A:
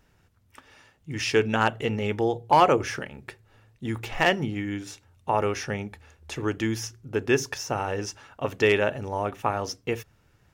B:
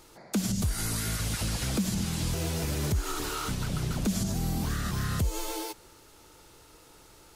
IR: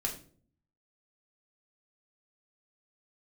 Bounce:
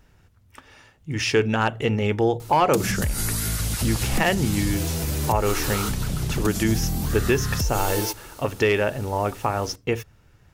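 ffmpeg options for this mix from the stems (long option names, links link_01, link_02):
-filter_complex "[0:a]volume=-3.5dB[link_01];[1:a]acompressor=threshold=-33dB:ratio=6,highshelf=frequency=11000:gain=10.5,adelay=2400,volume=0.5dB[link_02];[link_01][link_02]amix=inputs=2:normalize=0,acontrast=85,lowshelf=frequency=100:gain=6.5,alimiter=limit=-10dB:level=0:latency=1:release=140"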